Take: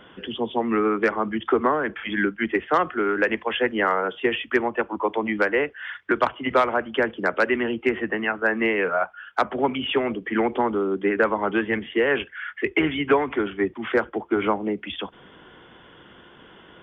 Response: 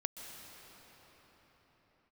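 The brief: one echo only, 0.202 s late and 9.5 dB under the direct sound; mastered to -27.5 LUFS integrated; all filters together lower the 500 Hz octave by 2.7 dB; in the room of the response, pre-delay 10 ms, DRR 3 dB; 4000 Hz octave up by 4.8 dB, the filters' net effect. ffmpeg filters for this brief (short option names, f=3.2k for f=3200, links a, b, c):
-filter_complex "[0:a]equalizer=f=500:t=o:g=-3.5,equalizer=f=4k:t=o:g=7.5,aecho=1:1:202:0.335,asplit=2[a][b];[1:a]atrim=start_sample=2205,adelay=10[c];[b][c]afir=irnorm=-1:irlink=0,volume=-3dB[d];[a][d]amix=inputs=2:normalize=0,volume=-5.5dB"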